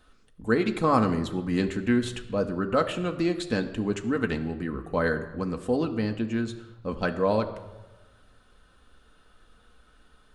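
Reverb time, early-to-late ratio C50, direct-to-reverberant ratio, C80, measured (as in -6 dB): 1.2 s, 12.5 dB, 4.0 dB, 14.0 dB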